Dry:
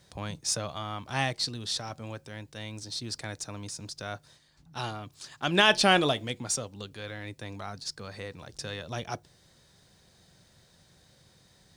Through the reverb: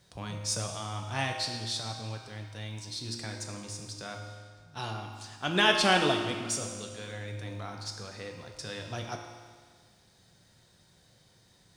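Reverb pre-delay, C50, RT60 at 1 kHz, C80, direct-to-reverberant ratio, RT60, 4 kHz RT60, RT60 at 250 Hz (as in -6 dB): 3 ms, 5.0 dB, 1.7 s, 6.0 dB, 2.0 dB, 1.7 s, 1.6 s, 1.7 s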